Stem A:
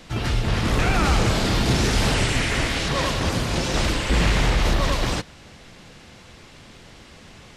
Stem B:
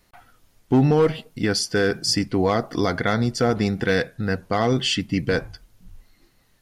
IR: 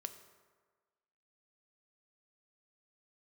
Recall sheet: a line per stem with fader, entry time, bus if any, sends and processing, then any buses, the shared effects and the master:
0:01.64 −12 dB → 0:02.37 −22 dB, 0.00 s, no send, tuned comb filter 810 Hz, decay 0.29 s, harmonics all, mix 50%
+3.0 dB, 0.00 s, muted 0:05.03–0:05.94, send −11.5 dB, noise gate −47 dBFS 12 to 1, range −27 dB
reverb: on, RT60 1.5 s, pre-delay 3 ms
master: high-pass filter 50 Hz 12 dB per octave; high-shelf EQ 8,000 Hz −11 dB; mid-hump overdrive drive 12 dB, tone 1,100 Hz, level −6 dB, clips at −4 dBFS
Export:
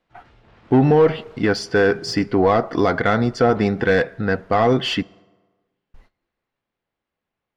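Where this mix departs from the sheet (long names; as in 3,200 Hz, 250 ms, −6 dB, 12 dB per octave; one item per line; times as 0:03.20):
stem A −12.0 dB → −22.0 dB
master: missing high-pass filter 50 Hz 12 dB per octave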